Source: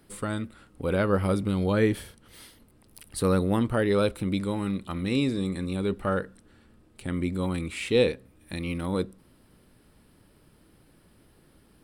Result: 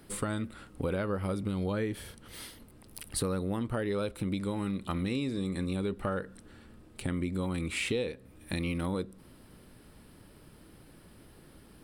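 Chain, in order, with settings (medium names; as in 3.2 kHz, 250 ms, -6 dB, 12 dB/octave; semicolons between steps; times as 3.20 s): compression 8:1, threshold -33 dBFS, peak gain reduction 16.5 dB; trim +4 dB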